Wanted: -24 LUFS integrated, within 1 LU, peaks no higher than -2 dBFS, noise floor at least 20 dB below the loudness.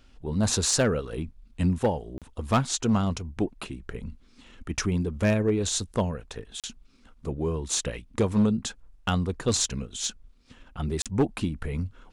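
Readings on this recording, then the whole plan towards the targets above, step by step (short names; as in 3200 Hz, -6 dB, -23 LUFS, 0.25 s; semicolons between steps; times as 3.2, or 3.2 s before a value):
clipped 0.5%; flat tops at -16.0 dBFS; dropouts 3; longest dropout 37 ms; loudness -27.5 LUFS; peak -16.0 dBFS; loudness target -24.0 LUFS
-> clip repair -16 dBFS; interpolate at 2.18/6.6/11.02, 37 ms; gain +3.5 dB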